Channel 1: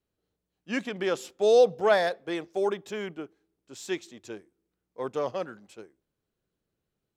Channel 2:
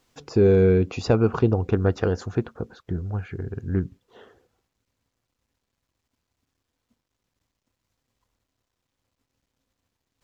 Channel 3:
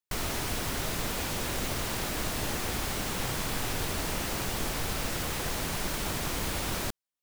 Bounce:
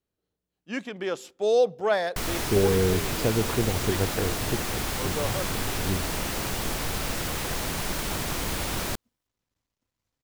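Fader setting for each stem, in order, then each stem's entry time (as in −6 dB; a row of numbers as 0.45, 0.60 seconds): −2.0, −6.0, +2.5 decibels; 0.00, 2.15, 2.05 seconds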